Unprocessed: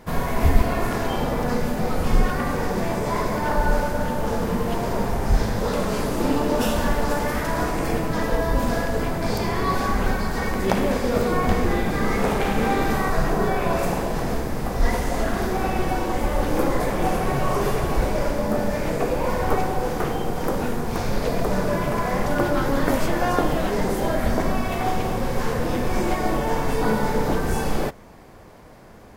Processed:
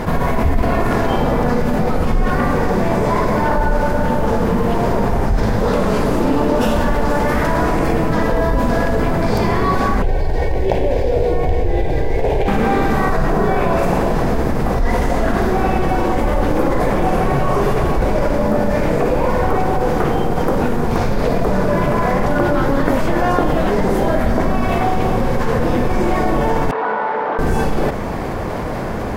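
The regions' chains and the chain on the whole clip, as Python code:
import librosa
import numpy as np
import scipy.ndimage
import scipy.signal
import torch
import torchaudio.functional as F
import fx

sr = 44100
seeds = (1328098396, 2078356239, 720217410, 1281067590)

y = fx.chain(x, sr, fx.median_filter(points=5),
    fx.bass_treble(bass_db=4, treble_db=-4),
    fx.fixed_phaser(hz=520.0, stages=4), at=(10.02, 12.48))
y = fx.chain(y, sr, fx.median_filter(points=15),
    fx.highpass(hz=1000.0, slope=12),
    fx.spacing_loss(db_at_10k=43), at=(26.71, 27.39))
y = fx.high_shelf(y, sr, hz=3500.0, db=-10.0)
y = fx.env_flatten(y, sr, amount_pct=70)
y = F.gain(torch.from_numpy(y), -2.0).numpy()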